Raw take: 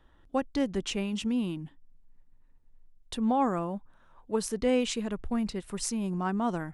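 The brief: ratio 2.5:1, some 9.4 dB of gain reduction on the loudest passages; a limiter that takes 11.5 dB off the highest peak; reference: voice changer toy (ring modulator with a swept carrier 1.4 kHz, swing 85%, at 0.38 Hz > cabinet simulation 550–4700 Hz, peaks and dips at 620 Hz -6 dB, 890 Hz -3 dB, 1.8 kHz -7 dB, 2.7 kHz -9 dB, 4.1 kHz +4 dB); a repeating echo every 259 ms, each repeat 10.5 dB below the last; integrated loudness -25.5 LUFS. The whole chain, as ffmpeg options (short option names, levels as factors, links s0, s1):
-af "acompressor=threshold=0.0141:ratio=2.5,alimiter=level_in=2.66:limit=0.0631:level=0:latency=1,volume=0.376,aecho=1:1:259|518|777:0.299|0.0896|0.0269,aeval=exprs='val(0)*sin(2*PI*1400*n/s+1400*0.85/0.38*sin(2*PI*0.38*n/s))':c=same,highpass=550,equalizer=f=620:t=q:w=4:g=-6,equalizer=f=890:t=q:w=4:g=-3,equalizer=f=1800:t=q:w=4:g=-7,equalizer=f=2700:t=q:w=4:g=-9,equalizer=f=4100:t=q:w=4:g=4,lowpass=f=4700:w=0.5412,lowpass=f=4700:w=1.3066,volume=14.1"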